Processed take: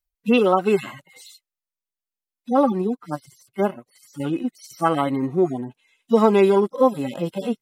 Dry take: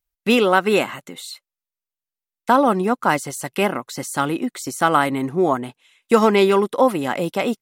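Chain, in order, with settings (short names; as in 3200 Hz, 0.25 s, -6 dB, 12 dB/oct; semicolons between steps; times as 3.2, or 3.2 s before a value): median-filter separation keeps harmonic; 2.72–4.2 upward expander 1.5:1, over -33 dBFS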